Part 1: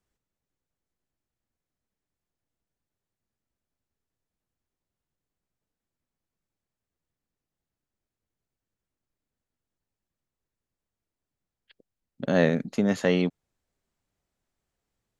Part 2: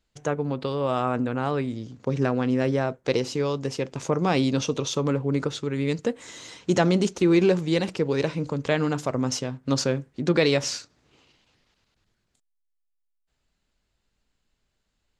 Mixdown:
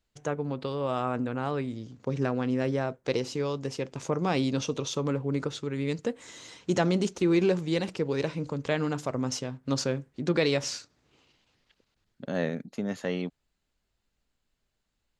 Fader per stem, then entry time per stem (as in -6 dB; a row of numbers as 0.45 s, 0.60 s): -8.0 dB, -4.5 dB; 0.00 s, 0.00 s